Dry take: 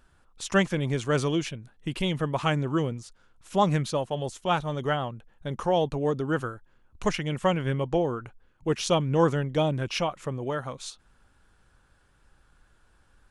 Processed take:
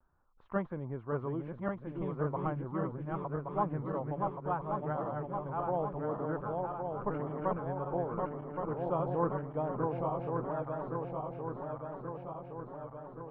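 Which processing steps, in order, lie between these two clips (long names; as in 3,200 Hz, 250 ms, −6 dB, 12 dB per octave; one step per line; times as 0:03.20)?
feedback delay that plays each chunk backwards 561 ms, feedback 78%, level −3 dB
transistor ladder low-pass 1,300 Hz, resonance 40%
pitch vibrato 0.68 Hz 39 cents
level −4 dB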